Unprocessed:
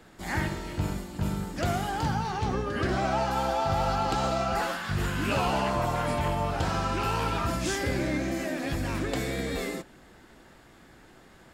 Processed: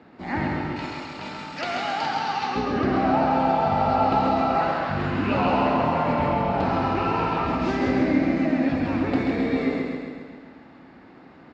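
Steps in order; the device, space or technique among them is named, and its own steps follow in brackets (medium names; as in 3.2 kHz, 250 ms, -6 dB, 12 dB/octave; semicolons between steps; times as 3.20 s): 0.76–2.56 s: frequency weighting ITU-R 468; frequency-shifting delay pedal into a guitar cabinet (frequency-shifting echo 159 ms, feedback 34%, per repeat -39 Hz, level -7 dB; cabinet simulation 93–3800 Hz, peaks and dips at 110 Hz -4 dB, 260 Hz +8 dB, 810 Hz +3 dB, 1.6 kHz -4 dB, 3.3 kHz -9 dB); feedback delay 134 ms, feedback 59%, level -5 dB; trim +2.5 dB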